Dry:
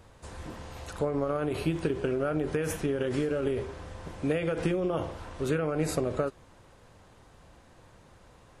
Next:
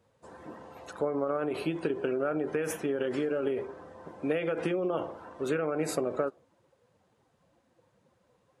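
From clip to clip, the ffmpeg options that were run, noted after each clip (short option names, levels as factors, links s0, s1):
-af "afftdn=nr=15:nf=-47,highpass=240"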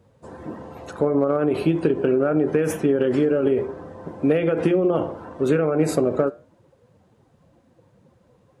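-filter_complex "[0:a]lowshelf=f=450:g=11,flanger=delay=6.8:depth=2.3:regen=-86:speed=0.76:shape=triangular,asplit=2[s0][s1];[s1]volume=11.2,asoftclip=hard,volume=0.0891,volume=0.266[s2];[s0][s2]amix=inputs=2:normalize=0,volume=2.24"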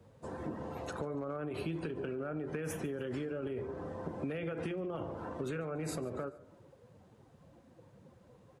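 -filter_complex "[0:a]acrossover=split=1000[s0][s1];[s0]alimiter=limit=0.1:level=0:latency=1:release=144[s2];[s2][s1]amix=inputs=2:normalize=0,acrossover=split=140[s3][s4];[s4]acompressor=threshold=0.0178:ratio=5[s5];[s3][s5]amix=inputs=2:normalize=0,aecho=1:1:143|286|429:0.0841|0.037|0.0163,volume=0.75"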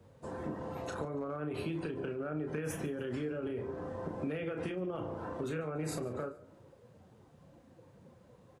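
-filter_complex "[0:a]asplit=2[s0][s1];[s1]adelay=33,volume=0.447[s2];[s0][s2]amix=inputs=2:normalize=0"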